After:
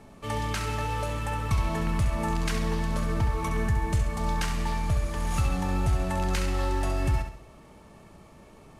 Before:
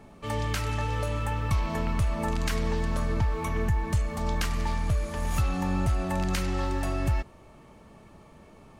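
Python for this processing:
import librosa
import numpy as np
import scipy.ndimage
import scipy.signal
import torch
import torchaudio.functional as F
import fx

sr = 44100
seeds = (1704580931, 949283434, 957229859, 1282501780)

p1 = fx.cvsd(x, sr, bps=64000)
y = p1 + fx.room_flutter(p1, sr, wall_m=11.5, rt60_s=0.52, dry=0)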